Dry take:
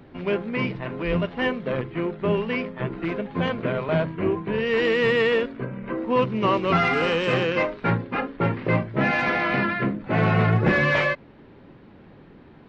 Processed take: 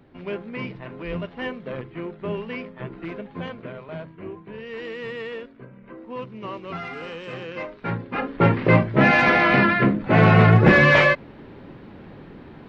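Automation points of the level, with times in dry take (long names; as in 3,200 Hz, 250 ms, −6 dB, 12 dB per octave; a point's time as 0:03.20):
0:03.25 −6 dB
0:03.84 −12.5 dB
0:07.38 −12.5 dB
0:08.14 −1.5 dB
0:08.43 +6 dB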